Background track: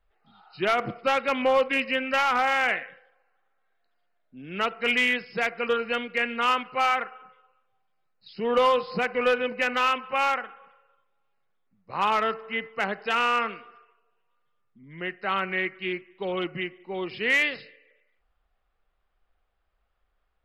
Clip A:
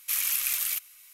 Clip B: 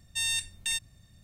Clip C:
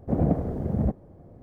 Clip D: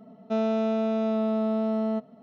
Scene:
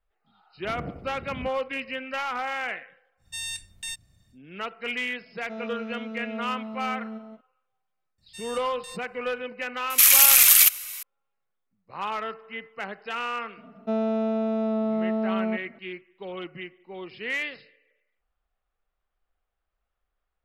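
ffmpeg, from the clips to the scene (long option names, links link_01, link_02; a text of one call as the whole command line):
ffmpeg -i bed.wav -i cue0.wav -i cue1.wav -i cue2.wav -i cue3.wav -filter_complex "[2:a]asplit=2[link_01][link_02];[4:a]asplit=2[link_03][link_04];[0:a]volume=-7dB[link_05];[link_03]aecho=1:1:177:0.501[link_06];[1:a]alimiter=level_in=18dB:limit=-1dB:release=50:level=0:latency=1[link_07];[link_04]highshelf=frequency=3600:gain=-10.5[link_08];[3:a]atrim=end=1.42,asetpts=PTS-STARTPTS,volume=-14.5dB,afade=type=in:duration=0.004:curve=hsin,afade=type=out:start_time=1.416:duration=0.004:curve=hsin,adelay=570[link_09];[link_01]atrim=end=1.23,asetpts=PTS-STARTPTS,volume=-4.5dB,afade=type=in:duration=0.1,afade=type=out:start_time=1.13:duration=0.1,adelay=139797S[link_10];[link_06]atrim=end=2.22,asetpts=PTS-STARTPTS,volume=-11.5dB,afade=type=in:duration=0.004:curve=hsin,afade=type=out:start_time=2.216:duration=0.004:curve=hsin,adelay=5190[link_11];[link_02]atrim=end=1.23,asetpts=PTS-STARTPTS,volume=-13dB,afade=type=in:duration=0.004:curve=hsin,afade=type=out:start_time=1.226:duration=0.004:curve=hsin,adelay=360738S[link_12];[link_07]atrim=end=1.13,asetpts=PTS-STARTPTS,volume=-1.5dB,afade=type=in:duration=0.004:curve=hsin,afade=type=out:start_time=1.126:duration=0.004:curve=hsin,adelay=9900[link_13];[link_08]atrim=end=2.22,asetpts=PTS-STARTPTS,afade=type=in:duration=0.004:curve=hsin,afade=type=out:start_time=2.216:duration=0.004:curve=hsin,adelay=13570[link_14];[link_05][link_09][link_10][link_11][link_12][link_13][link_14]amix=inputs=7:normalize=0" out.wav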